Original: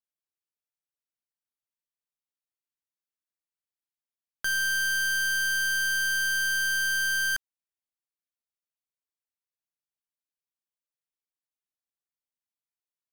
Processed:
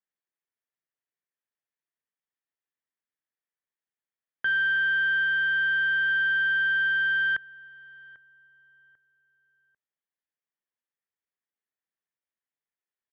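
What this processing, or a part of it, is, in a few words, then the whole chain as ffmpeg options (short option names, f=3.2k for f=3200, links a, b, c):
guitar cabinet: -filter_complex "[0:a]firequalizer=gain_entry='entry(3400,0);entry(5300,-27);entry(8700,-8)':delay=0.05:min_phase=1,asettb=1/sr,asplit=3[a][b][c];[a]atrim=end=4.764[d];[b]atrim=start=4.76:end=6.09,asetpts=PTS-STARTPTS,afade=t=in:d=0.004:c=qsin,afade=t=out:st=1.326:d=0.004:c=qsin,acrossover=split=6400[e][f];[f]acompressor=threshold=-52dB:ratio=4:attack=1:release=60[g];[e][g]amix=inputs=2:normalize=0[h];[c]atrim=start=6.086[i];[d][h]acrossfade=d=0.004:c1=hsin:c2=qsin[j];[j][i]acrossfade=d=0.004:c1=qsin:c2=hsin,highpass=110,equalizer=f=420:t=q:w=4:g=3,equalizer=f=1.8k:t=q:w=4:g=8,equalizer=f=2.8k:t=q:w=4:g=-4,lowpass=f=3.6k:w=0.5412,lowpass=f=3.6k:w=1.3066,asplit=2[k][l];[l]adelay=794,lowpass=f=1.6k:p=1,volume=-20dB,asplit=2[m][n];[n]adelay=794,lowpass=f=1.6k:p=1,volume=0.36,asplit=2[o][p];[p]adelay=794,lowpass=f=1.6k:p=1,volume=0.36[q];[k][m][o][q]amix=inputs=4:normalize=0"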